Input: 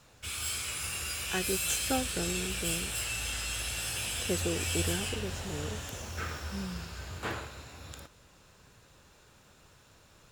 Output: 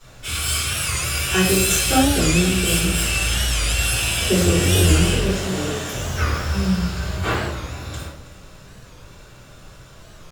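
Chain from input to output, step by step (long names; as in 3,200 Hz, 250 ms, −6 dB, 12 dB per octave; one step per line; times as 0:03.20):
0:05.28–0:05.91: high-pass filter 120 Hz → 260 Hz 12 dB per octave
delay that swaps between a low-pass and a high-pass 161 ms, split 1,100 Hz, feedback 58%, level −13 dB
rectangular room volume 80 cubic metres, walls mixed, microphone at 3.5 metres
wow of a warped record 45 rpm, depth 160 cents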